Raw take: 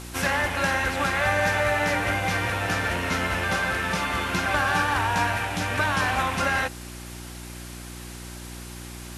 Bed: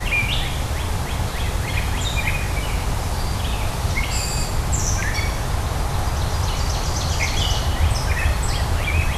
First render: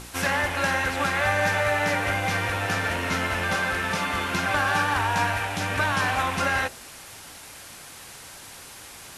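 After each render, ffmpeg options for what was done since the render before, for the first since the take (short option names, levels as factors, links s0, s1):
-af "bandreject=f=60:t=h:w=4,bandreject=f=120:t=h:w=4,bandreject=f=180:t=h:w=4,bandreject=f=240:t=h:w=4,bandreject=f=300:t=h:w=4,bandreject=f=360:t=h:w=4,bandreject=f=420:t=h:w=4,bandreject=f=480:t=h:w=4,bandreject=f=540:t=h:w=4,bandreject=f=600:t=h:w=4,bandreject=f=660:t=h:w=4"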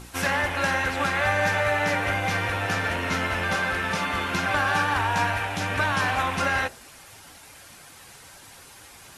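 -af "afftdn=nr=6:nf=-44"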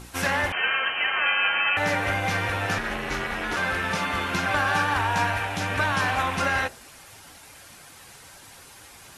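-filter_complex "[0:a]asettb=1/sr,asplit=3[s0][s1][s2];[s0]atrim=end=0.524[s3];[s1]atrim=start=0.52:end=1.77,asetpts=PTS-STARTPTS,afade=t=in:d=0.004:c=qsin,afade=t=out:st=1.246:d=0.004:c=qsin,lowpass=f=2700:t=q:w=0.5098,lowpass=f=2700:t=q:w=0.6013,lowpass=f=2700:t=q:w=0.9,lowpass=f=2700:t=q:w=2.563,afreqshift=-3200[s4];[s2]atrim=start=1.766[s5];[s3][s4]acrossfade=d=0.004:c1=hsin:c2=qsin[s6];[s6][s5]acrossfade=d=0.004:c1=qsin:c2=hsin,asettb=1/sr,asplit=3[s7][s8][s9];[s7]atrim=end=2.784[s10];[s8]atrim=start=2.78:end=3.57,asetpts=PTS-STARTPTS,afade=t=in:d=0.004:c=qsin,afade=t=out:st=0.786:d=0.004:c=qsin,aeval=exprs='val(0)*sin(2*PI*130*n/s)':c=same[s11];[s9]atrim=start=3.566[s12];[s10][s11]acrossfade=d=0.004:c1=hsin:c2=qsin[s13];[s13][s12]acrossfade=d=0.004:c1=qsin:c2=hsin"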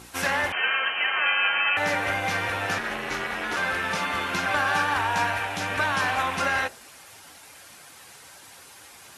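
-af "highpass=47,lowshelf=f=190:g=-8.5"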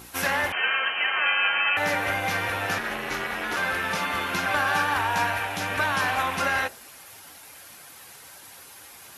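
-af "aexciter=amount=2.4:drive=5:freq=11000"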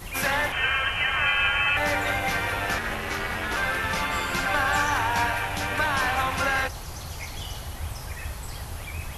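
-filter_complex "[1:a]volume=0.178[s0];[0:a][s0]amix=inputs=2:normalize=0"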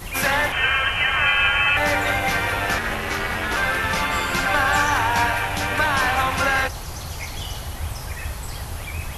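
-af "volume=1.68"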